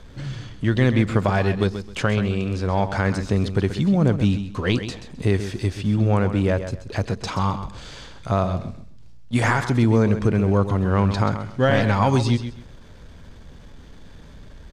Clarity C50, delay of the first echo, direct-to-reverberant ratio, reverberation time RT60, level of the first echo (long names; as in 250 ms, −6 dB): no reverb audible, 131 ms, no reverb audible, no reverb audible, −10.5 dB